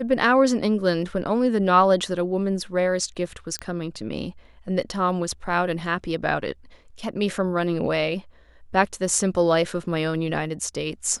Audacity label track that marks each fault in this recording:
3.590000	3.590000	click −15 dBFS

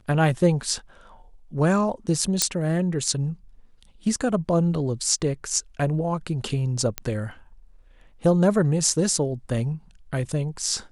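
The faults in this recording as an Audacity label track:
2.420000	2.420000	click −2 dBFS
6.980000	6.980000	click −9 dBFS

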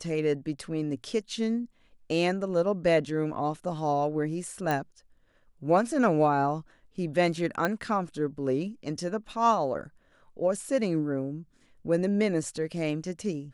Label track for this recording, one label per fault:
4.710000	4.710000	click −15 dBFS
7.650000	7.650000	click −13 dBFS

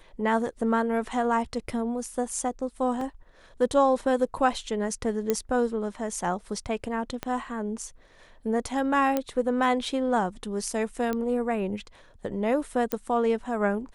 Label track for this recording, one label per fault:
3.010000	3.010000	drop-out 2.9 ms
5.300000	5.300000	click −11 dBFS
7.230000	7.230000	click −15 dBFS
9.170000	9.170000	click −12 dBFS
11.130000	11.130000	click −16 dBFS
12.920000	12.920000	click −10 dBFS

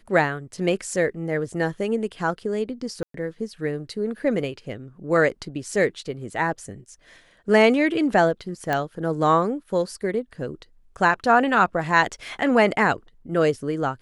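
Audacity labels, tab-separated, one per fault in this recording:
3.030000	3.140000	drop-out 113 ms
8.730000	8.730000	click −11 dBFS

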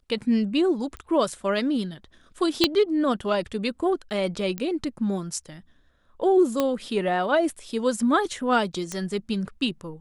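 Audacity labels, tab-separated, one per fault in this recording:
0.970000	0.970000	click −22 dBFS
2.640000	2.640000	click −4 dBFS
4.580000	4.580000	click −16 dBFS
6.600000	6.600000	click −9 dBFS
8.920000	8.920000	click −16 dBFS

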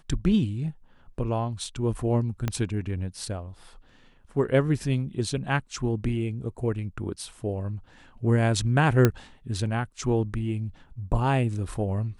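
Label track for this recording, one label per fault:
2.480000	2.480000	click −13 dBFS
9.050000	9.050000	click −6 dBFS

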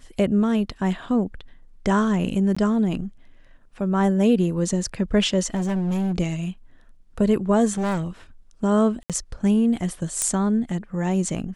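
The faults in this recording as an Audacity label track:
2.550000	2.560000	drop-out 15 ms
5.540000	6.130000	clipping −20.5 dBFS
7.720000	8.070000	clipping −21 dBFS
9.030000	9.100000	drop-out 67 ms
10.220000	10.220000	click −8 dBFS

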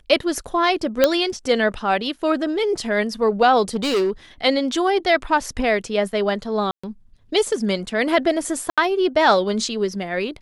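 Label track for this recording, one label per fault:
1.040000	1.040000	click −1 dBFS
3.750000	4.100000	clipping −16 dBFS
6.710000	6.830000	drop-out 125 ms
8.700000	8.780000	drop-out 76 ms

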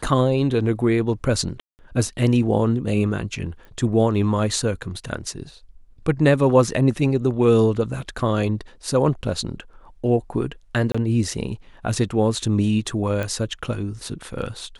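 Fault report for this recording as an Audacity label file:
1.600000	1.790000	drop-out 189 ms
3.650000	3.650000	click −32 dBFS
10.920000	10.950000	drop-out 25 ms
13.230000	13.230000	click −14 dBFS

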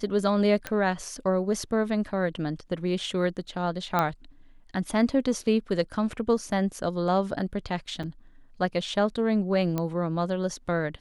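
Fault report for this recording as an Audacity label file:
0.670000	0.670000	click −15 dBFS
3.990000	3.990000	click −11 dBFS
8.030000	8.040000	drop-out 6.2 ms
9.780000	9.780000	click −15 dBFS

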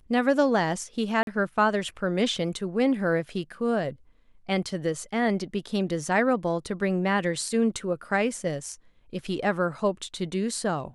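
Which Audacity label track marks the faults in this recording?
1.230000	1.270000	drop-out 42 ms

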